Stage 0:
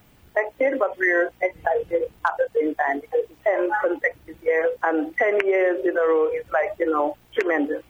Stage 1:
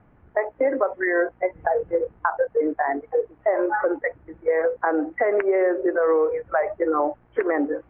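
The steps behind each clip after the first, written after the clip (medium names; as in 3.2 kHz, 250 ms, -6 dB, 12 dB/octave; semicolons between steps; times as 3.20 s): low-pass 1.7 kHz 24 dB/octave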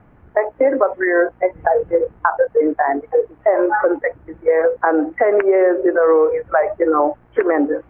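dynamic bell 2 kHz, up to -4 dB, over -40 dBFS, Q 4.6; trim +6.5 dB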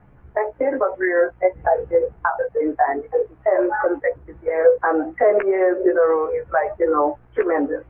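chorus voices 6, 0.44 Hz, delay 15 ms, depth 1.3 ms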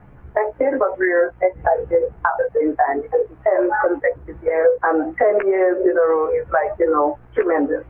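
compression 2:1, threshold -22 dBFS, peak gain reduction 7.5 dB; trim +5.5 dB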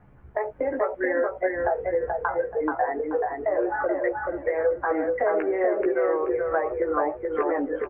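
feedback delay 431 ms, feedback 26%, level -3.5 dB; trim -8.5 dB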